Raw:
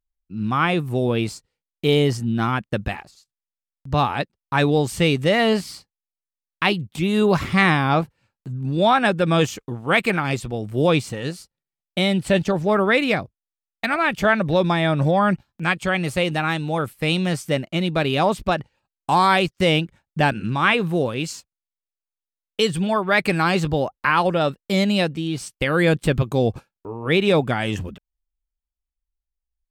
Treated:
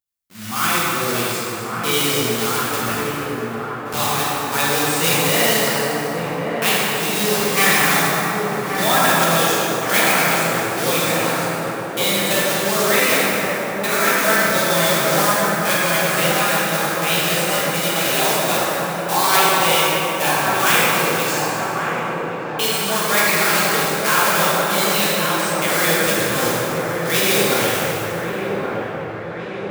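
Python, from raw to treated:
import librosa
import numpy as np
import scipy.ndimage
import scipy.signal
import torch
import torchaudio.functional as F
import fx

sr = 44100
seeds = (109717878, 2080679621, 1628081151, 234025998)

p1 = fx.block_float(x, sr, bits=3)
p2 = scipy.signal.sosfilt(scipy.signal.butter(2, 47.0, 'highpass', fs=sr, output='sos'), p1)
p3 = fx.tilt_eq(p2, sr, slope=3.0)
p4 = p3 + fx.echo_wet_lowpass(p3, sr, ms=1126, feedback_pct=59, hz=1500.0, wet_db=-4.0, dry=0)
p5 = fx.rev_plate(p4, sr, seeds[0], rt60_s=4.0, hf_ratio=0.5, predelay_ms=0, drr_db=-8.0)
y = p5 * 10.0 ** (-7.0 / 20.0)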